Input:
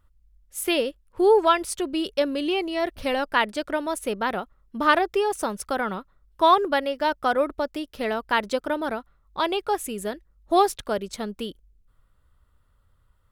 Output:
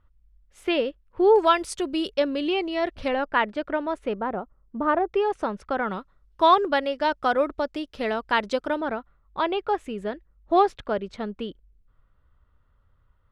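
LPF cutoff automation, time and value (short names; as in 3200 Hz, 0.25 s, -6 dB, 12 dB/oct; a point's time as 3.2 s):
3000 Hz
from 1.36 s 7800 Hz
from 2.1 s 4600 Hz
from 3.08 s 2300 Hz
from 4.19 s 1000 Hz
from 5.14 s 2500 Hz
from 5.91 s 6000 Hz
from 8.81 s 2700 Hz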